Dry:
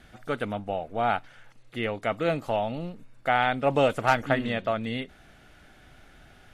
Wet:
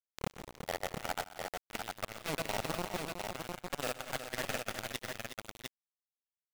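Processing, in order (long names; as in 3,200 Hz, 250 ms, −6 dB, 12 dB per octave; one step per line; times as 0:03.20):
turntable start at the beginning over 0.78 s
high-pass filter 53 Hz 6 dB per octave
parametric band 8,000 Hz +14 dB 0.7 octaves
reversed playback
downward compressor 16 to 1, threshold −37 dBFS, peak gain reduction 23 dB
reversed playback
granular cloud 100 ms, grains 20 per second, pitch spread up and down by 0 semitones
bit reduction 6 bits
output level in coarse steps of 14 dB
multi-tap delay 125/171/366/703 ms −16.5/−17/−9/−4.5 dB
level +7 dB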